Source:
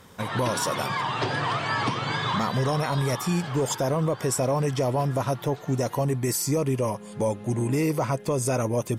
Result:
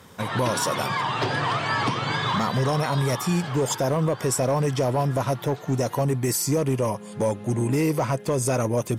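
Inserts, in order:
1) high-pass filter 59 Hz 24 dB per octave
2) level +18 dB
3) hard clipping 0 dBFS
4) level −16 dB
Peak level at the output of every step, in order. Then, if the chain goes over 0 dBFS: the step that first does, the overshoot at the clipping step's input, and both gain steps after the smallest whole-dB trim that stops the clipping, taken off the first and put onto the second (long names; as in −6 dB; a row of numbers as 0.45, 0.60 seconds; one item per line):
−13.0, +5.0, 0.0, −16.0 dBFS
step 2, 5.0 dB
step 2 +13 dB, step 4 −11 dB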